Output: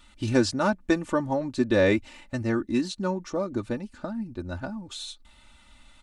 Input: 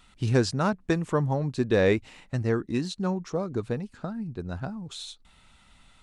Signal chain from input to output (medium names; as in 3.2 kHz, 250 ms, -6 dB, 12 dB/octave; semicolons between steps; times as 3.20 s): comb 3.4 ms, depth 75%